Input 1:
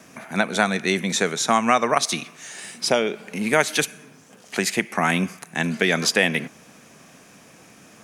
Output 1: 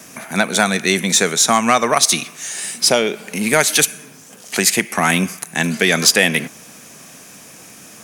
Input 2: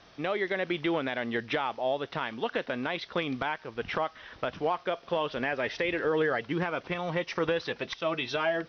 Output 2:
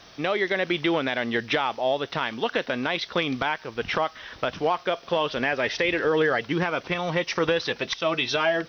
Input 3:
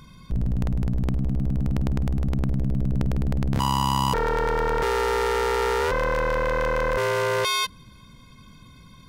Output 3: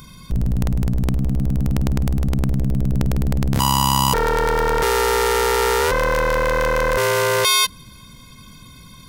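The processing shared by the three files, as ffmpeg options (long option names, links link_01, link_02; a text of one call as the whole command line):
ffmpeg -i in.wav -af "crystalizer=i=2:c=0,acontrast=44,volume=-1dB" out.wav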